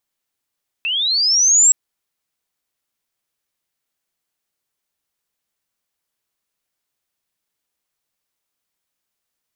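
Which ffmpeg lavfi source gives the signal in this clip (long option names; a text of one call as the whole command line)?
ffmpeg -f lavfi -i "aevalsrc='pow(10,(-18+10.5*t/0.87)/20)*sin(2*PI*(2600*t+5100*t*t/(2*0.87)))':duration=0.87:sample_rate=44100" out.wav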